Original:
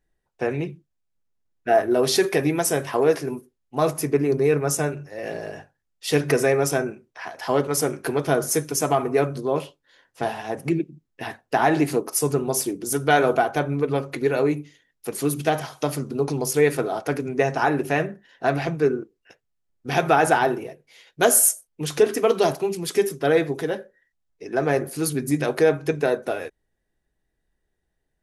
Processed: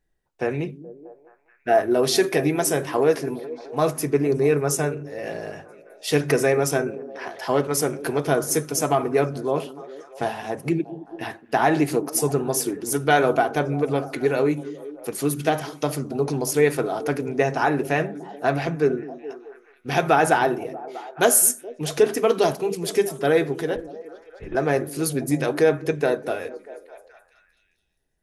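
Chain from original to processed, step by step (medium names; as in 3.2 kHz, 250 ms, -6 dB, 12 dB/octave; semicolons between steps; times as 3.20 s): 23.76–24.55 s: LPC vocoder at 8 kHz whisper; repeats whose band climbs or falls 213 ms, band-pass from 240 Hz, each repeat 0.7 oct, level -11.5 dB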